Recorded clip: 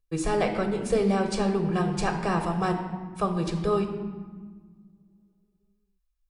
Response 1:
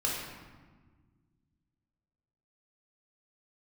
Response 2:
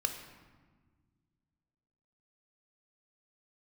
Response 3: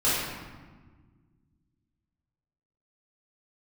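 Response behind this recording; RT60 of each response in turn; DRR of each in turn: 2; 1.4, 1.5, 1.4 seconds; −4.5, 5.0, −12.0 decibels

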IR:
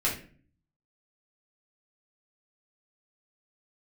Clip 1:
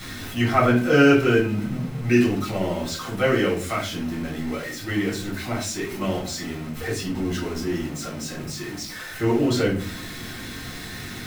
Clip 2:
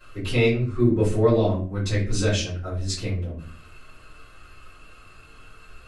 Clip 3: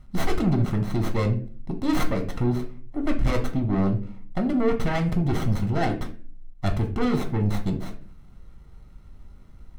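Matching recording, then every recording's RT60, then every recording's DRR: 1; 0.45, 0.45, 0.45 seconds; −6.0, −14.5, 3.0 decibels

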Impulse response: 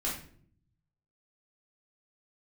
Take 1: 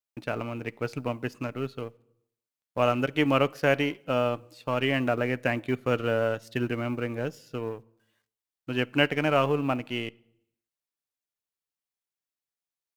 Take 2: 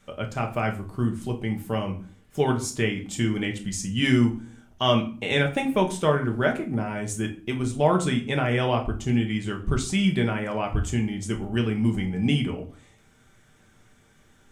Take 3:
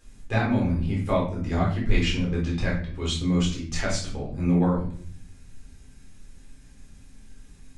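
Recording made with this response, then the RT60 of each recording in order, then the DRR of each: 3; 0.85, 0.40, 0.55 seconds; 16.0, 2.0, −5.0 decibels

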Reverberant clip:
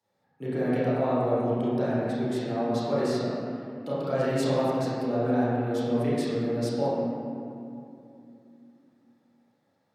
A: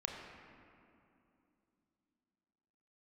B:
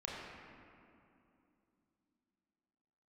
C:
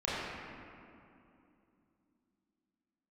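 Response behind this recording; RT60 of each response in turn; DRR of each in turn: C; 2.7, 2.7, 2.7 seconds; 0.0, −5.5, −10.5 decibels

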